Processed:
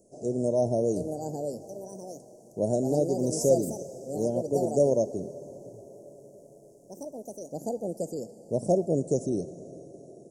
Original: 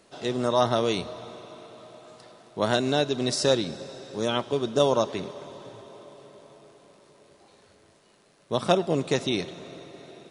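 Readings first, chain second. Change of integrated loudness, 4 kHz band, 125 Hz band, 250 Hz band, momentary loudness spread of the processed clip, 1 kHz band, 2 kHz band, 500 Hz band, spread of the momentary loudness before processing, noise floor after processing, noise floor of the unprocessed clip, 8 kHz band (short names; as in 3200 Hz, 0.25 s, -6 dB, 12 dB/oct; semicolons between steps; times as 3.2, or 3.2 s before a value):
-2.5 dB, -20.0 dB, 0.0 dB, 0.0 dB, 20 LU, -8.5 dB, under -35 dB, 0.0 dB, 21 LU, -54 dBFS, -60 dBFS, 0.0 dB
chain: echoes that change speed 0.768 s, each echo +4 st, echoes 2, each echo -6 dB; elliptic band-stop 610–6600 Hz, stop band 40 dB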